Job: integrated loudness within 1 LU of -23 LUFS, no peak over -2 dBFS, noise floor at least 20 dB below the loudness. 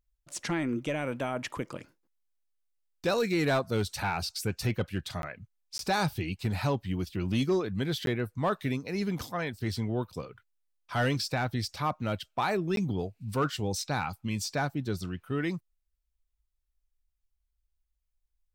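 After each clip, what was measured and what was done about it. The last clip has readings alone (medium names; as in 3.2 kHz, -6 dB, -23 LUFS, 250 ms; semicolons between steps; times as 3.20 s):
clipped samples 0.2%; clipping level -20.5 dBFS; dropouts 4; longest dropout 12 ms; loudness -31.5 LUFS; peak level -20.5 dBFS; loudness target -23.0 LUFS
-> clip repair -20.5 dBFS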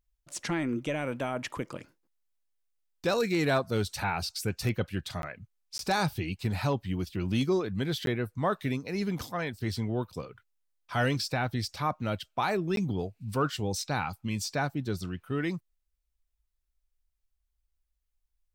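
clipped samples 0.0%; dropouts 4; longest dropout 12 ms
-> interpolate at 5.22/5.78/8.06/12.76 s, 12 ms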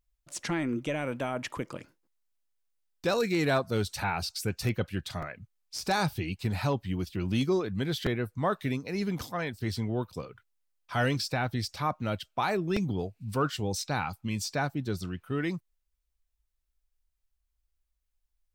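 dropouts 0; loudness -31.5 LUFS; peak level -13.0 dBFS; loudness target -23.0 LUFS
-> trim +8.5 dB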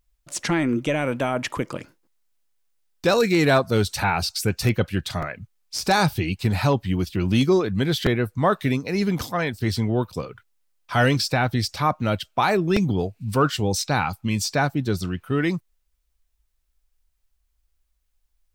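loudness -23.0 LUFS; peak level -4.5 dBFS; noise floor -71 dBFS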